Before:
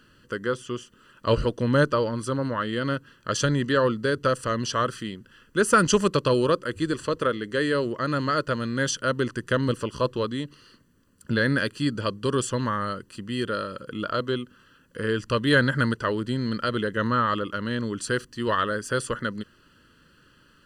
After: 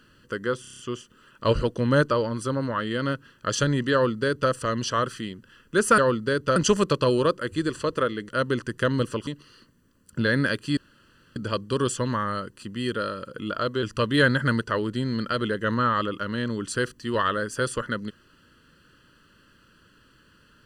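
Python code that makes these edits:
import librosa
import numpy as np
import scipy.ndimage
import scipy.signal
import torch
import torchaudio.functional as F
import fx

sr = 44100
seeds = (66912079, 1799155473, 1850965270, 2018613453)

y = fx.edit(x, sr, fx.stutter(start_s=0.61, slice_s=0.03, count=7),
    fx.duplicate(start_s=3.75, length_s=0.58, to_s=5.8),
    fx.cut(start_s=7.53, length_s=1.45),
    fx.cut(start_s=9.96, length_s=0.43),
    fx.insert_room_tone(at_s=11.89, length_s=0.59),
    fx.cut(start_s=14.36, length_s=0.8), tone=tone)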